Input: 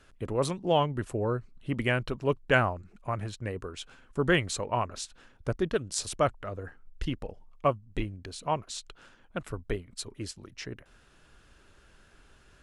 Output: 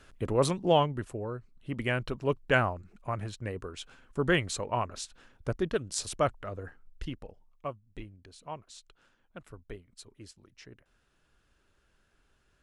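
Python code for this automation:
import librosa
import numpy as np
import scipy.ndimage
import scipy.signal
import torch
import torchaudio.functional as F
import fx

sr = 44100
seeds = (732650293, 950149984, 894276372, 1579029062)

y = fx.gain(x, sr, db=fx.line((0.67, 2.5), (1.31, -8.0), (2.05, -1.5), (6.65, -1.5), (7.67, -11.5)))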